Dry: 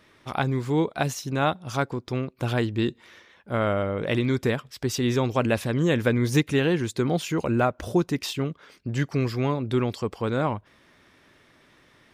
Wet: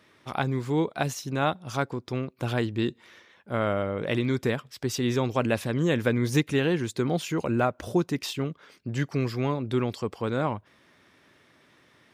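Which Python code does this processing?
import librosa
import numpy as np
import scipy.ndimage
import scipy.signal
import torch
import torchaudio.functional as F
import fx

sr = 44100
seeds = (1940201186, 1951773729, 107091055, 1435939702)

y = scipy.signal.sosfilt(scipy.signal.butter(2, 82.0, 'highpass', fs=sr, output='sos'), x)
y = F.gain(torch.from_numpy(y), -2.0).numpy()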